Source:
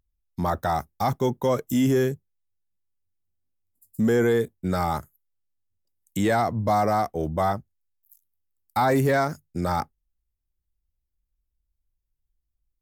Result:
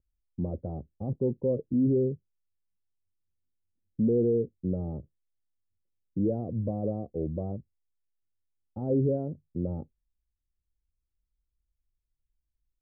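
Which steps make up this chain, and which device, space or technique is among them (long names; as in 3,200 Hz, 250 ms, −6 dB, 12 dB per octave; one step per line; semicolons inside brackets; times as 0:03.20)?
under water (low-pass filter 410 Hz 24 dB per octave; parametric band 530 Hz +9 dB 0.4 octaves)
level −3.5 dB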